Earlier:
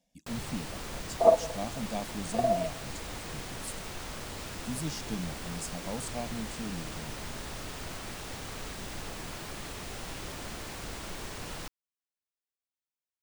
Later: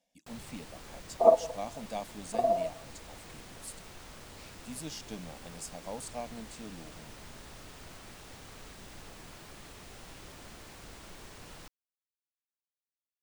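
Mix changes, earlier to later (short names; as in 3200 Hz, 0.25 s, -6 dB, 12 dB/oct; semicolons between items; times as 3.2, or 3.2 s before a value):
speech: add tone controls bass -13 dB, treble -3 dB; first sound -9.0 dB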